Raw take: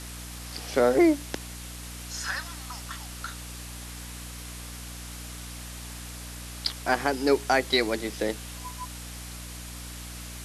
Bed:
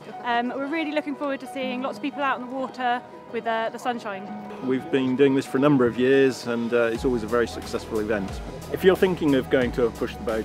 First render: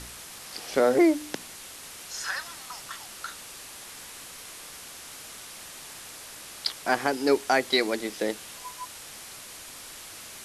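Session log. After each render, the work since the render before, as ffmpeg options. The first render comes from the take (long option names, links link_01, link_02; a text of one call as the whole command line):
ffmpeg -i in.wav -af "bandreject=frequency=60:width_type=h:width=4,bandreject=frequency=120:width_type=h:width=4,bandreject=frequency=180:width_type=h:width=4,bandreject=frequency=240:width_type=h:width=4,bandreject=frequency=300:width_type=h:width=4" out.wav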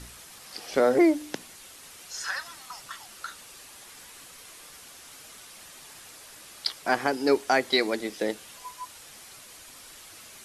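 ffmpeg -i in.wav -af "afftdn=noise_reduction=6:noise_floor=-44" out.wav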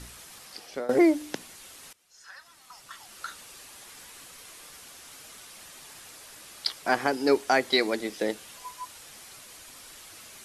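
ffmpeg -i in.wav -filter_complex "[0:a]asplit=3[link_01][link_02][link_03];[link_01]atrim=end=0.89,asetpts=PTS-STARTPTS,afade=type=out:start_time=0.38:duration=0.51:silence=0.11885[link_04];[link_02]atrim=start=0.89:end=1.93,asetpts=PTS-STARTPTS,afade=type=in:duration=0.004:curve=hsin:silence=0.11885,afade=type=out:start_time=1.036:duration=0.004:curve=hsin:silence=0.0891251[link_05];[link_03]atrim=start=1.93,asetpts=PTS-STARTPTS,afade=type=in:duration=1.31:curve=qua:silence=0.0891251[link_06];[link_04][link_05][link_06]concat=n=3:v=0:a=1" out.wav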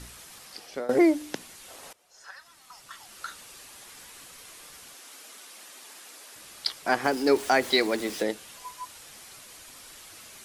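ffmpeg -i in.wav -filter_complex "[0:a]asettb=1/sr,asplit=3[link_01][link_02][link_03];[link_01]atrim=end=1.684[link_04];[link_02]atrim=start=1.68:end=2.31,asetpts=PTS-STARTPTS,afade=type=in:duration=0.004:curve=qsin,afade=type=out:start_time=0.626:duration=0.004:curve=qsin,equalizer=frequency=640:width=0.89:gain=12[link_05];[link_03]atrim=start=2.306[link_06];[link_04][link_05]acrossfade=duration=0.004:curve1=hsin:curve2=qsin[link_07];[link_07][link_06]acrossfade=duration=0.004:curve1=qsin:curve2=hsin,asettb=1/sr,asplit=3[link_08][link_09][link_10];[link_08]atrim=end=4.944[link_11];[link_09]atrim=start=4.94:end=6.36,asetpts=PTS-STARTPTS,afade=type=in:duration=0.004:curve=qsin,afade=type=out:start_time=1.416:duration=0.004:curve=qsin,highpass=frequency=230:width=0.5412,highpass=frequency=230:width=1.3066[link_12];[link_10]atrim=start=6.356[link_13];[link_11][link_12]acrossfade=duration=0.004:curve1=hsin:curve2=qsin[link_14];[link_14][link_13]acrossfade=duration=0.004:curve1=qsin:curve2=hsin,asettb=1/sr,asplit=3[link_15][link_16][link_17];[link_15]atrim=end=7.044[link_18];[link_16]atrim=start=7.04:end=8.23,asetpts=PTS-STARTPTS,afade=type=in:duration=0.004:curve=qsin,afade=type=out:start_time=1.186:duration=0.004:curve=qsin,aeval=exprs='val(0)+0.5*0.0158*sgn(val(0))':channel_layout=same[link_19];[link_17]atrim=start=8.226[link_20];[link_18][link_19]acrossfade=duration=0.004:curve1=hsin:curve2=qsin[link_21];[link_21][link_20]acrossfade=duration=0.004:curve1=qsin:curve2=hsin" out.wav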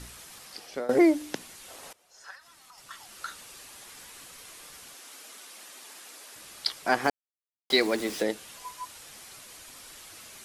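ffmpeg -i in.wav -filter_complex "[0:a]asettb=1/sr,asplit=3[link_01][link_02][link_03];[link_01]atrim=end=2.354[link_04];[link_02]atrim=start=2.35:end=2.78,asetpts=PTS-STARTPTS,afade=type=in:duration=0.004:curve=qsin,afade=type=out:start_time=0.426:duration=0.004:curve=qsin,acompressor=threshold=-49dB:ratio=4:attack=3.2:release=140:knee=1:detection=peak[link_05];[link_03]atrim=start=2.776[link_06];[link_04][link_05]acrossfade=duration=0.004:curve1=hsin:curve2=qsin[link_07];[link_07][link_06]acrossfade=duration=0.004:curve1=qsin:curve2=hsin,asplit=3[link_08][link_09][link_10];[link_08]atrim=end=7.1,asetpts=PTS-STARTPTS,afade=type=out:start_time=7.096:duration=0.004:curve=hsin[link_11];[link_09]atrim=start=7.1:end=7.7,asetpts=PTS-STARTPTS,volume=0[link_12];[link_10]atrim=start=7.7,asetpts=PTS-STARTPTS,afade=type=in:duration=0.004:curve=hsin[link_13];[link_11][link_12][link_13]concat=n=3:v=0:a=1" out.wav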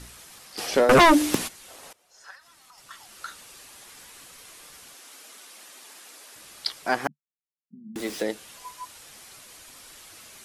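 ffmpeg -i in.wav -filter_complex "[0:a]asplit=3[link_01][link_02][link_03];[link_01]afade=type=out:start_time=0.57:duration=0.02[link_04];[link_02]aeval=exprs='0.282*sin(PI/2*3.98*val(0)/0.282)':channel_layout=same,afade=type=in:start_time=0.57:duration=0.02,afade=type=out:start_time=1.47:duration=0.02[link_05];[link_03]afade=type=in:start_time=1.47:duration=0.02[link_06];[link_04][link_05][link_06]amix=inputs=3:normalize=0,asettb=1/sr,asplit=3[link_07][link_08][link_09];[link_07]atrim=end=7.074[link_10];[link_08]atrim=start=7.07:end=7.96,asetpts=PTS-STARTPTS,afade=type=in:duration=0.004:curve=qsin,afade=type=out:start_time=0.886:duration=0.004:curve=qsin,asuperpass=centerf=180:order=8:qfactor=2.2[link_11];[link_09]atrim=start=7.956[link_12];[link_10][link_11]acrossfade=duration=0.004:curve1=hsin:curve2=qsin[link_13];[link_13][link_12]acrossfade=duration=0.004:curve1=qsin:curve2=hsin" out.wav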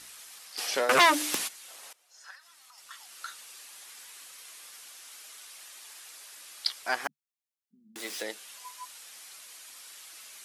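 ffmpeg -i in.wav -af "highpass=frequency=1500:poles=1" out.wav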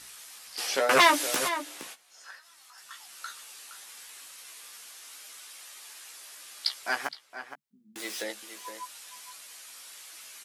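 ffmpeg -i in.wav -filter_complex "[0:a]asplit=2[link_01][link_02];[link_02]adelay=15,volume=-6dB[link_03];[link_01][link_03]amix=inputs=2:normalize=0,asplit=2[link_04][link_05];[link_05]adelay=466.5,volume=-10dB,highshelf=frequency=4000:gain=-10.5[link_06];[link_04][link_06]amix=inputs=2:normalize=0" out.wav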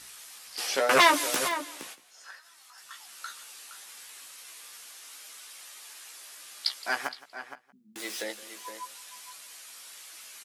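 ffmpeg -i in.wav -af "aecho=1:1:169:0.112" out.wav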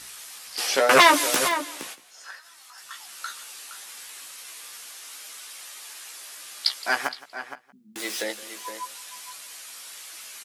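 ffmpeg -i in.wav -af "volume=5.5dB,alimiter=limit=-3dB:level=0:latency=1" out.wav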